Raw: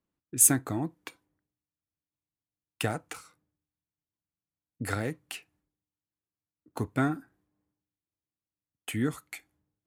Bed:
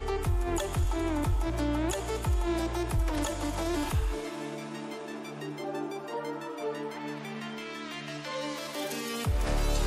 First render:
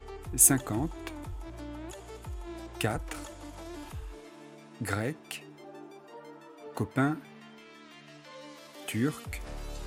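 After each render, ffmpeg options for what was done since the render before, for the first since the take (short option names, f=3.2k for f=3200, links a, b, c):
-filter_complex "[1:a]volume=-12.5dB[a];[0:a][a]amix=inputs=2:normalize=0"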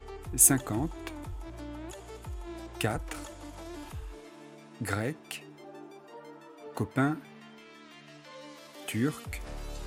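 -af anull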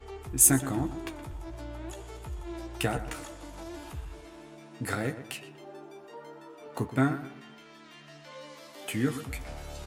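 -filter_complex "[0:a]asplit=2[a][b];[b]adelay=15,volume=-7dB[c];[a][c]amix=inputs=2:normalize=0,asplit=2[d][e];[e]adelay=121,lowpass=f=3k:p=1,volume=-12dB,asplit=2[f][g];[g]adelay=121,lowpass=f=3k:p=1,volume=0.37,asplit=2[h][i];[i]adelay=121,lowpass=f=3k:p=1,volume=0.37,asplit=2[j][k];[k]adelay=121,lowpass=f=3k:p=1,volume=0.37[l];[d][f][h][j][l]amix=inputs=5:normalize=0"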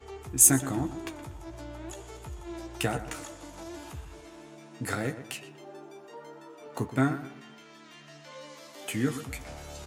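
-af "highpass=65,equalizer=f=6.6k:w=2.4:g=4.5"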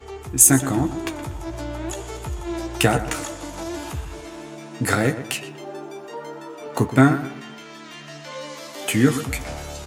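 -af "dynaudnorm=f=200:g=5:m=4.5dB,alimiter=level_in=7dB:limit=-1dB:release=50:level=0:latency=1"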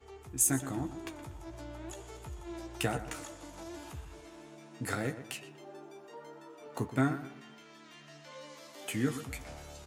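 -af "volume=-14.5dB"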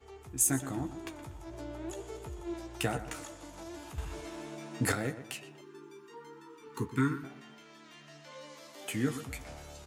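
-filter_complex "[0:a]asettb=1/sr,asplit=3[a][b][c];[a]atrim=end=1.514[d];[b]atrim=start=1.51:end=2.54,asetpts=PTS-STARTPTS,afade=t=in:d=0.004:c=qsin,afade=t=out:st=1.026:d=0.004:c=qsin,equalizer=f=410:w=1.5:g=8[e];[c]atrim=start=2.536[f];[d][e]acrossfade=d=0.004:c1=hsin:c2=qsin[g];[g][f]acrossfade=d=0.004:c1=qsin:c2=hsin,asettb=1/sr,asplit=3[h][i][j];[h]atrim=end=5.614[k];[i]atrim=start=5.61:end=7.24,asetpts=PTS-STARTPTS,afade=t=in:d=0.004:c=qsin,afade=t=out:st=1.626:d=0.004:c=qsin,asuperstop=centerf=650:order=20:qfactor=1.7[l];[j]atrim=start=7.236[m];[k][l]acrossfade=d=0.004:c1=hsin:c2=qsin[n];[n][m]acrossfade=d=0.004:c1=qsin:c2=hsin,asplit=3[o][p][q];[o]atrim=end=3.982[r];[p]atrim=start=3.978:end=4.922,asetpts=PTS-STARTPTS,volume=8dB[s];[q]atrim=start=4.918[t];[r][s]acrossfade=d=0.004:c1=hsin:c2=hsin[u];[u][t]acrossfade=d=0.004:c1=hsin:c2=hsin"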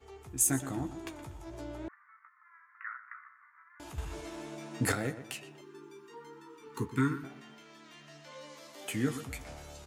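-filter_complex "[0:a]asettb=1/sr,asplit=3[a][b][c];[a]atrim=end=1.884[d];[b]atrim=start=1.88:end=3.8,asetpts=PTS-STARTPTS,afade=t=in:d=0.004:c=qsin,afade=t=out:st=1.916:d=0.004:c=qsin,asuperpass=centerf=1500:order=12:qfactor=1.5[e];[c]atrim=start=3.796[f];[d][e]acrossfade=d=0.004:c1=hsin:c2=qsin[g];[g][f]acrossfade=d=0.004:c1=qsin:c2=hsin"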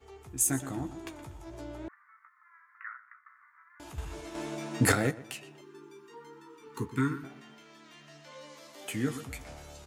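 -filter_complex "[0:a]asplit=4[a][b][c][d];[a]atrim=end=3.26,asetpts=PTS-STARTPTS,afade=t=out:st=2.82:d=0.44:silence=0.199526[e];[b]atrim=start=3.26:end=4.352,asetpts=PTS-STARTPTS,afade=t=in:d=0.004:c=hsin:silence=0.199526[f];[c]atrim=start=4.348:end=5.112,asetpts=PTS-STARTPTS,volume=6dB[g];[d]atrim=start=5.108[h];[e][f]concat=n=2:v=0:a=1[i];[i][g]acrossfade=d=0.004:c1=hsin:c2=hsin[j];[j][h]acrossfade=d=0.004:c1=hsin:c2=hsin"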